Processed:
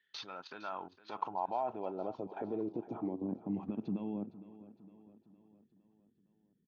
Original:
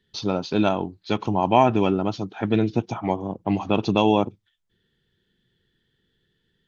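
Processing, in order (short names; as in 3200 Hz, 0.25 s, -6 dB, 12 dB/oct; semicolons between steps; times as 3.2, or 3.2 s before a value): 3.54–4.14 bell 2000 Hz +12.5 dB 1.9 oct; compressor 8:1, threshold -27 dBFS, peak gain reduction 16.5 dB; limiter -25.5 dBFS, peak gain reduction 11.5 dB; level quantiser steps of 13 dB; band-pass sweep 1900 Hz -> 220 Hz, 0.08–3.6; feedback echo 0.46 s, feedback 54%, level -16.5 dB; gain +8 dB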